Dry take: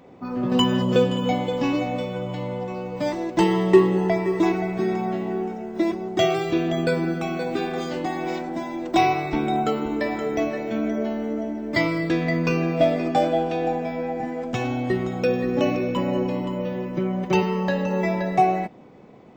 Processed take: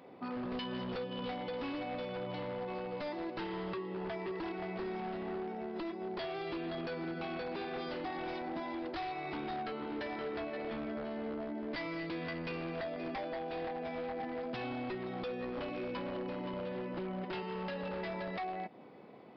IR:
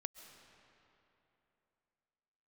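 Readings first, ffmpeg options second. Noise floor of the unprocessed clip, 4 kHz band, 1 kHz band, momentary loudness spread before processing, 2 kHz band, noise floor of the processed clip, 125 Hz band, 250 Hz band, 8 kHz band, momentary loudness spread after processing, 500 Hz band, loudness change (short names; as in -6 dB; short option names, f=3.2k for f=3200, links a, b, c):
-35 dBFS, -14.5 dB, -15.5 dB, 8 LU, -13.0 dB, -44 dBFS, -19.0 dB, -17.0 dB, under -30 dB, 1 LU, -16.0 dB, -16.0 dB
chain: -af "highpass=f=300:p=1,acompressor=threshold=-31dB:ratio=6,aeval=exprs='0.0335*(abs(mod(val(0)/0.0335+3,4)-2)-1)':c=same,aresample=11025,aresample=44100,volume=-4dB"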